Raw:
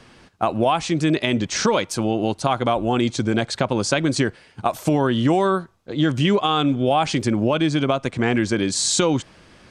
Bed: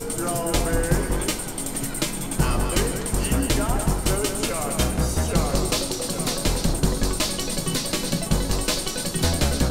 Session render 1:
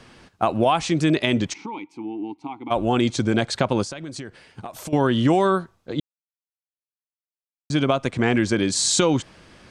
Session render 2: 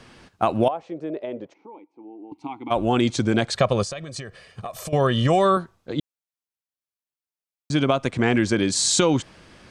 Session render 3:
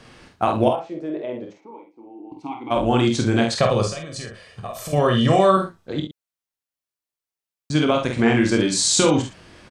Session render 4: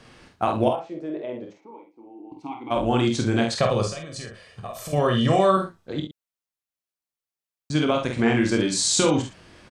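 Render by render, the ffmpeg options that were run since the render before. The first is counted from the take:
ffmpeg -i in.wav -filter_complex "[0:a]asplit=3[link_01][link_02][link_03];[link_01]afade=type=out:start_time=1.52:duration=0.02[link_04];[link_02]asplit=3[link_05][link_06][link_07];[link_05]bandpass=frequency=300:width_type=q:width=8,volume=0dB[link_08];[link_06]bandpass=frequency=870:width_type=q:width=8,volume=-6dB[link_09];[link_07]bandpass=frequency=2240:width_type=q:width=8,volume=-9dB[link_10];[link_08][link_09][link_10]amix=inputs=3:normalize=0,afade=type=in:start_time=1.52:duration=0.02,afade=type=out:start_time=2.7:duration=0.02[link_11];[link_03]afade=type=in:start_time=2.7:duration=0.02[link_12];[link_04][link_11][link_12]amix=inputs=3:normalize=0,asettb=1/sr,asplit=3[link_13][link_14][link_15];[link_13]atrim=end=3.834[link_16];[link_14]atrim=start=3.83:end=4.93,asetpts=PTS-STARTPTS,afade=type=in:duration=0.004:curve=qsin,afade=type=out:start_time=1.096:duration=0.004:curve=qsin,acompressor=threshold=-32dB:ratio=5:attack=3.2:release=140:knee=1:detection=peak[link_17];[link_15]atrim=start=4.926[link_18];[link_16][link_17]acrossfade=duration=0.004:curve1=hsin:curve2=qsin[link_19];[link_19][link_18]acrossfade=duration=0.004:curve1=qsin:curve2=hsin,asplit=3[link_20][link_21][link_22];[link_20]atrim=end=6,asetpts=PTS-STARTPTS,afade=type=out:start_time=5.996:duration=0.004:curve=hsin[link_23];[link_21]atrim=start=6:end=7.7,asetpts=PTS-STARTPTS,volume=0[link_24];[link_22]atrim=start=7.7,asetpts=PTS-STARTPTS,afade=type=in:duration=0.004:curve=hsin[link_25];[link_23][link_24][link_25]concat=n=3:v=0:a=1" out.wav
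ffmpeg -i in.wav -filter_complex "[0:a]asettb=1/sr,asplit=3[link_01][link_02][link_03];[link_01]atrim=end=0.684[link_04];[link_02]atrim=start=0.68:end=2.32,asetpts=PTS-STARTPTS,afade=type=in:duration=0.004:curve=qsin,afade=type=out:start_time=1.636:duration=0.004:curve=qsin,bandpass=frequency=540:width_type=q:width=3.2[link_05];[link_03]atrim=start=2.316[link_06];[link_04][link_05]acrossfade=duration=0.004:curve1=hsin:curve2=qsin[link_07];[link_07][link_06]acrossfade=duration=0.004:curve1=qsin:curve2=hsin,asettb=1/sr,asplit=3[link_08][link_09][link_10];[link_08]atrim=end=3.564[link_11];[link_09]atrim=start=3.56:end=5.57,asetpts=PTS-STARTPTS,afade=type=in:duration=0.004:curve=qsin,afade=type=out:start_time=2.006:duration=0.004:curve=qsin,aecho=1:1:1.7:0.65,atrim=end_sample=88641[link_12];[link_10]atrim=start=5.566[link_13];[link_11][link_12]acrossfade=duration=0.004:curve1=hsin:curve2=qsin[link_14];[link_14][link_13]acrossfade=duration=0.004:curve1=qsin:curve2=hsin" out.wav
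ffmpeg -i in.wav -filter_complex "[0:a]asplit=2[link_01][link_02];[link_02]adelay=48,volume=-5dB[link_03];[link_01][link_03]amix=inputs=2:normalize=0,aecho=1:1:26|65:0.422|0.266" out.wav
ffmpeg -i in.wav -af "volume=-3dB" out.wav

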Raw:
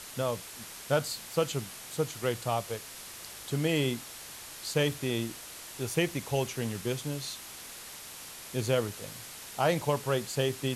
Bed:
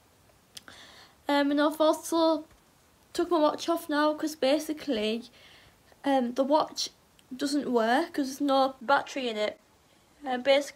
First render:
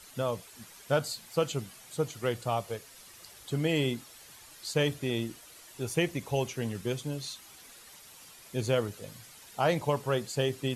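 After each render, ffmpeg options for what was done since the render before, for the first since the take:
ffmpeg -i in.wav -af "afftdn=noise_reduction=10:noise_floor=-45" out.wav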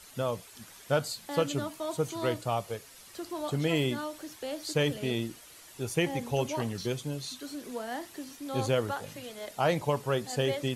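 ffmpeg -i in.wav -i bed.wav -filter_complex "[1:a]volume=-12dB[link_01];[0:a][link_01]amix=inputs=2:normalize=0" out.wav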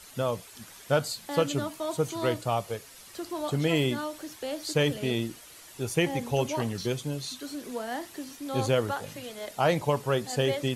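ffmpeg -i in.wav -af "volume=2.5dB" out.wav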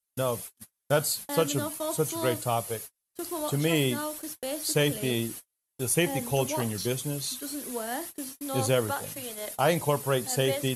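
ffmpeg -i in.wav -af "agate=range=-44dB:threshold=-42dB:ratio=16:detection=peak,equalizer=frequency=11000:width_type=o:width=0.77:gain=15" out.wav

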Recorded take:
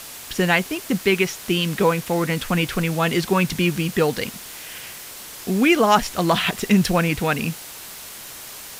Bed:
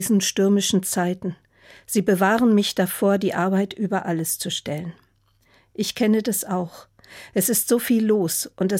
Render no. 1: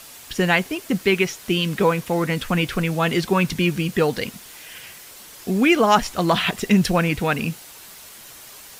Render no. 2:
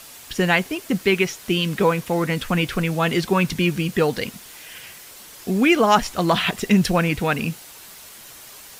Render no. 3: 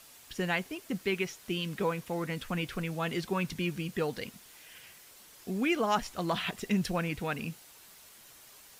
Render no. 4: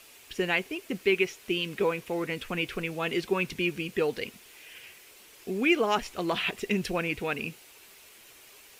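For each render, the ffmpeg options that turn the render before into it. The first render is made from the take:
ffmpeg -i in.wav -af "afftdn=noise_reduction=6:noise_floor=-38" out.wav
ffmpeg -i in.wav -af anull out.wav
ffmpeg -i in.wav -af "volume=-12.5dB" out.wav
ffmpeg -i in.wav -af "equalizer=frequency=160:width_type=o:width=0.67:gain=-4,equalizer=frequency=400:width_type=o:width=0.67:gain=8,equalizer=frequency=2500:width_type=o:width=0.67:gain=8" out.wav

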